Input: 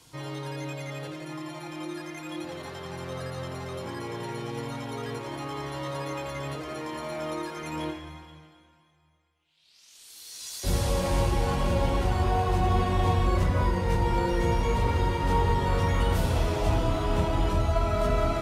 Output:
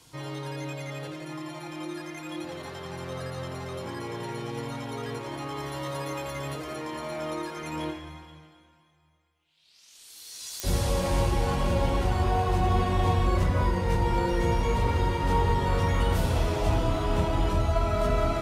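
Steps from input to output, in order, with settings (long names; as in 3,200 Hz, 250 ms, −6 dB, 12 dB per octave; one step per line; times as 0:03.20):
0:05.58–0:06.76: high-shelf EQ 10,000 Hz +9.5 dB
digital clicks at 0:10.60, −14 dBFS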